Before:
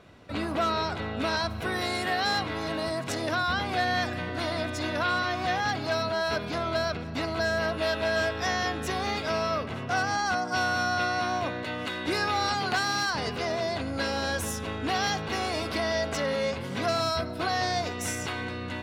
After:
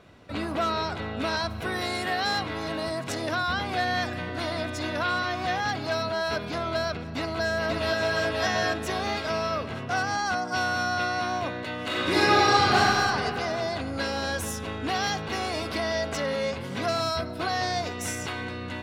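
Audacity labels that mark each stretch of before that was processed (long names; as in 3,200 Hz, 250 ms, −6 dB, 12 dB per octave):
7.160000	8.200000	delay throw 530 ms, feedback 40%, level −2 dB
11.830000	12.780000	thrown reverb, RT60 2.6 s, DRR −7 dB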